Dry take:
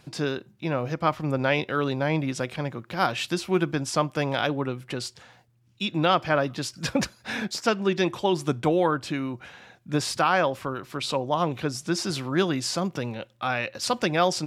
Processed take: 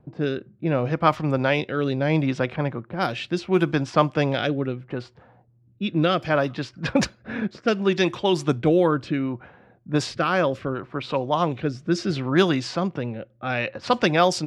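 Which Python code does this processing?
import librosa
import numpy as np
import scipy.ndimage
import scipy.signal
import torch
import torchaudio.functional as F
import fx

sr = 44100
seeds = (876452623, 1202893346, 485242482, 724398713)

y = fx.env_lowpass(x, sr, base_hz=590.0, full_db=-18.5)
y = fx.rotary(y, sr, hz=0.7)
y = F.gain(torch.from_numpy(y), 5.5).numpy()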